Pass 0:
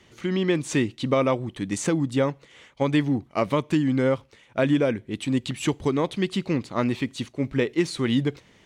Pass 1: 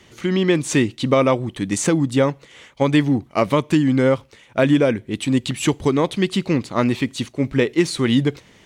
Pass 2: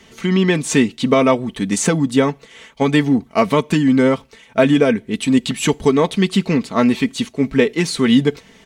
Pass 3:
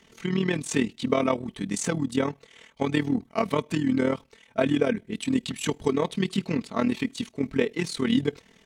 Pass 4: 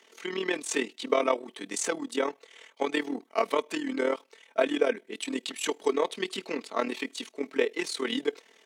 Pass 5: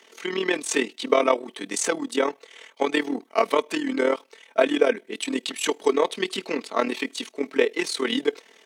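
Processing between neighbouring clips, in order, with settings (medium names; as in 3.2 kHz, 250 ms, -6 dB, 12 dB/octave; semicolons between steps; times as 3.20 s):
treble shelf 7.8 kHz +5 dB; trim +5.5 dB
comb 4.5 ms, depth 60%; trim +2 dB
AM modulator 39 Hz, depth 60%; trim -7 dB
high-pass 340 Hz 24 dB/octave
band-stop 7.2 kHz, Q 28; trim +5.5 dB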